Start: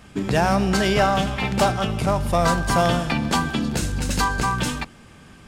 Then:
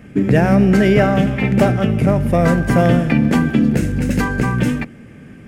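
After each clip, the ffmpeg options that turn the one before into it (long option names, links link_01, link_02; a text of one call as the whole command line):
ffmpeg -i in.wav -af "equalizer=frequency=125:width_type=o:width=1:gain=8,equalizer=frequency=250:width_type=o:width=1:gain=9,equalizer=frequency=500:width_type=o:width=1:gain=7,equalizer=frequency=1000:width_type=o:width=1:gain=-8,equalizer=frequency=2000:width_type=o:width=1:gain=9,equalizer=frequency=4000:width_type=o:width=1:gain=-10,equalizer=frequency=8000:width_type=o:width=1:gain=-5" out.wav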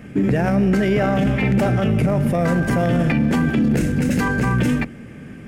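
ffmpeg -i in.wav -filter_complex "[0:a]bandreject=frequency=50:width_type=h:width=6,bandreject=frequency=100:width_type=h:width=6,asplit=2[link_01][link_02];[link_02]asoftclip=type=tanh:threshold=-13.5dB,volume=-11.5dB[link_03];[link_01][link_03]amix=inputs=2:normalize=0,alimiter=limit=-11dB:level=0:latency=1:release=16" out.wav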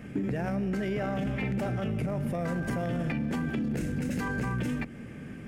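ffmpeg -i in.wav -af "acompressor=threshold=-23dB:ratio=6,volume=-5dB" out.wav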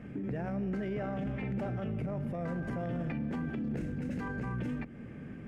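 ffmpeg -i in.wav -af "lowpass=frequency=1700:poles=1,alimiter=level_in=2dB:limit=-24dB:level=0:latency=1:release=240,volume=-2dB,volume=-2.5dB" out.wav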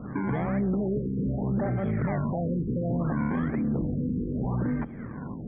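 ffmpeg -i in.wav -af "acrusher=samples=24:mix=1:aa=0.000001:lfo=1:lforange=24:lforate=1,asuperstop=centerf=2800:order=4:qfactor=1.9,afftfilt=real='re*lt(b*sr/1024,500*pow(3400/500,0.5+0.5*sin(2*PI*0.66*pts/sr)))':imag='im*lt(b*sr/1024,500*pow(3400/500,0.5+0.5*sin(2*PI*0.66*pts/sr)))':win_size=1024:overlap=0.75,volume=8dB" out.wav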